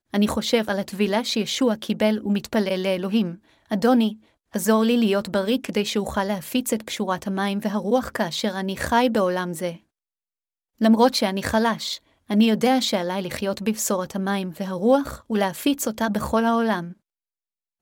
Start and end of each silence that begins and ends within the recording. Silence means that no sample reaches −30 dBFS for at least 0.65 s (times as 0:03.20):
0:09.73–0:10.81